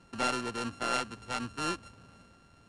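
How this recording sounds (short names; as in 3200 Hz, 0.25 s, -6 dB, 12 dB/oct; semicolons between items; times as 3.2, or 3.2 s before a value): a buzz of ramps at a fixed pitch in blocks of 32 samples; IMA ADPCM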